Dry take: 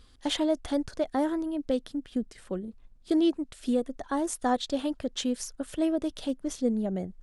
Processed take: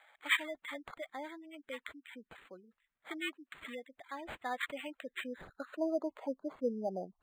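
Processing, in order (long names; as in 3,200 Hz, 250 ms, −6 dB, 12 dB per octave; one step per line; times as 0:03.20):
band-pass filter sweep 3,600 Hz → 1,000 Hz, 0:04.17–0:06.05
gate on every frequency bin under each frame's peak −15 dB strong
linearly interpolated sample-rate reduction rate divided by 8×
level +8 dB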